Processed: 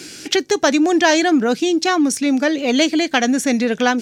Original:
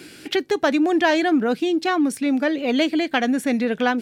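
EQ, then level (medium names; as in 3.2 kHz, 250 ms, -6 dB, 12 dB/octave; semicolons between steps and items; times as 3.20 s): peaking EQ 6.2 kHz +14 dB 0.81 oct; +3.5 dB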